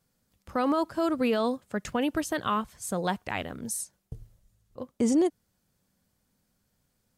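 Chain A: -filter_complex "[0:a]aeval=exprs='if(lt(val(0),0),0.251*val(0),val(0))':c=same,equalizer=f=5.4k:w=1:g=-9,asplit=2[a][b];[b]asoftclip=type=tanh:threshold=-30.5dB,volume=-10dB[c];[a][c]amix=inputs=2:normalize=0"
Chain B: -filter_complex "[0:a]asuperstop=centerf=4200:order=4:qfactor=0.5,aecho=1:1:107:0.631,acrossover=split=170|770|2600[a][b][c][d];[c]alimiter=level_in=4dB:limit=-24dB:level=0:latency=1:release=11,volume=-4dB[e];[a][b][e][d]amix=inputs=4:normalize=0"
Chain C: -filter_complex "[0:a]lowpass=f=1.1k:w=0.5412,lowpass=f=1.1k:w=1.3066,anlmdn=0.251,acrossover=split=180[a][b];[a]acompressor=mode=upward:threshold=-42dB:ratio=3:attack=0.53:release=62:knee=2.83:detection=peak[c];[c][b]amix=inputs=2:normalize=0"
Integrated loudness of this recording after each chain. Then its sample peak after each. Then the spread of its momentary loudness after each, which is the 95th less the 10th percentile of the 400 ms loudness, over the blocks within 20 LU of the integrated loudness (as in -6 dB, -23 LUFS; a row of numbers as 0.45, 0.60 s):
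-32.5, -28.5, -29.5 LUFS; -16.5, -13.5, -16.0 dBFS; 16, 16, 18 LU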